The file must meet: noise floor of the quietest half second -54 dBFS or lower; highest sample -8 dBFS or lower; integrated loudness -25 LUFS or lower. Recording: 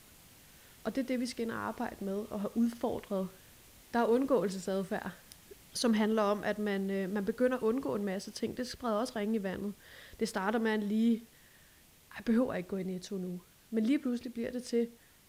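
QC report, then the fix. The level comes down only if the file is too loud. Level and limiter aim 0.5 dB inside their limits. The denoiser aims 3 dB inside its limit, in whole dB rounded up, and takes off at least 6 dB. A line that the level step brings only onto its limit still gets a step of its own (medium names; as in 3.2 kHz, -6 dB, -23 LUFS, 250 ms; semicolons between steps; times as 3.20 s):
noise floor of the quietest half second -61 dBFS: pass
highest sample -17.0 dBFS: pass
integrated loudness -34.0 LUFS: pass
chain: none needed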